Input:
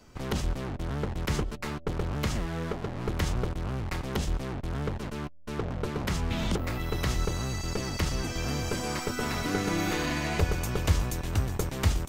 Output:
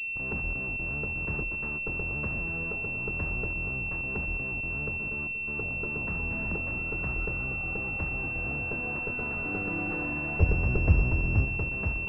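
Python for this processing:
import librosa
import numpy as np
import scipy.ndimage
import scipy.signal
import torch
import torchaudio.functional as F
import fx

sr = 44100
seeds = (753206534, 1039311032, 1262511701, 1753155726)

p1 = fx.low_shelf(x, sr, hz=490.0, db=10.0, at=(10.4, 11.45))
p2 = p1 + fx.echo_feedback(p1, sr, ms=237, feedback_pct=47, wet_db=-10.5, dry=0)
p3 = fx.pwm(p2, sr, carrier_hz=2700.0)
y = p3 * 10.0 ** (-6.0 / 20.0)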